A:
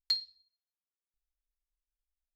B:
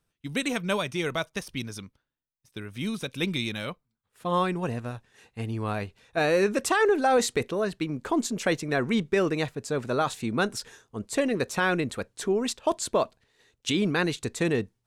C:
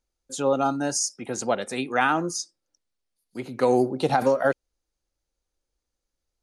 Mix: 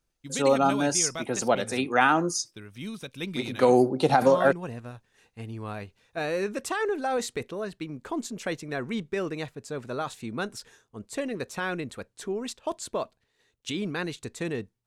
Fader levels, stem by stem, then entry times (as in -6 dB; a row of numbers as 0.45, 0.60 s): -14.0, -6.0, +1.0 dB; 0.35, 0.00, 0.00 s